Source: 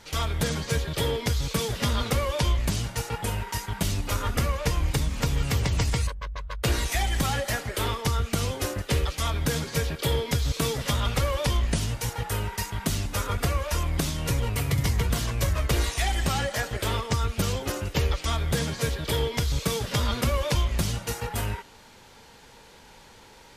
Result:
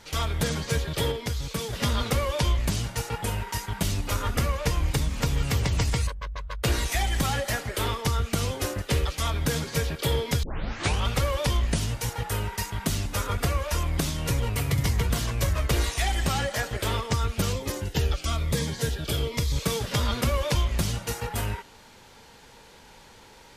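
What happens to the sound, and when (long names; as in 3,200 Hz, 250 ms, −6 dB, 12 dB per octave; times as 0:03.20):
0:01.12–0:01.73: clip gain −4 dB
0:10.43: tape start 0.64 s
0:17.53–0:19.56: phaser whose notches keep moving one way falling 1.1 Hz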